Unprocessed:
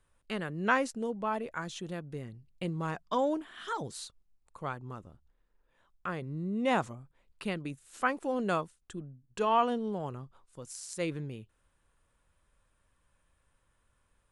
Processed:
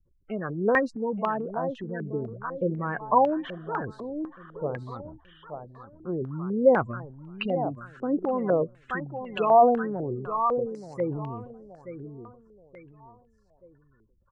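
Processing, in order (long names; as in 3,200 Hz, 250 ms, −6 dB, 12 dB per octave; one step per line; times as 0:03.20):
gate on every frequency bin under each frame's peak −15 dB strong
transient designer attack +2 dB, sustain +7 dB
repeating echo 877 ms, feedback 34%, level −10.5 dB
low-pass on a step sequencer 4 Hz 380–2,800 Hz
level +2.5 dB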